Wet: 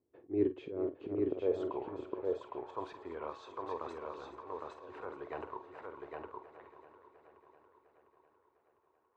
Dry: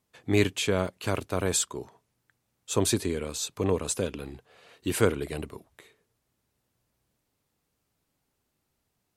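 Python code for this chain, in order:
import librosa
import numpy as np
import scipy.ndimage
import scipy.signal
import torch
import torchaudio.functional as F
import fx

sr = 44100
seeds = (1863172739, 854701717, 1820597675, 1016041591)

y = scipy.signal.sosfilt(scipy.signal.butter(2, 3800.0, 'lowpass', fs=sr, output='sos'), x)
y = fx.tilt_eq(y, sr, slope=-3.0)
y = fx.hpss(y, sr, part='percussive', gain_db=6)
y = fx.peak_eq(y, sr, hz=190.0, db=-14.5, octaves=0.7)
y = fx.auto_swell(y, sr, attack_ms=336.0)
y = fx.comb_fb(y, sr, f0_hz=370.0, decay_s=0.28, harmonics='odd', damping=0.0, mix_pct=60)
y = fx.echo_swing(y, sr, ms=703, ratio=1.5, feedback_pct=51, wet_db=-13.5)
y = fx.filter_sweep_bandpass(y, sr, from_hz=340.0, to_hz=980.0, start_s=1.27, end_s=1.92, q=2.9)
y = fx.doubler(y, sr, ms=48.0, db=-11.5)
y = y + 10.0 ** (-3.0 / 20.0) * np.pad(y, (int(810 * sr / 1000.0), 0))[:len(y)]
y = y * 10.0 ** (9.0 / 20.0)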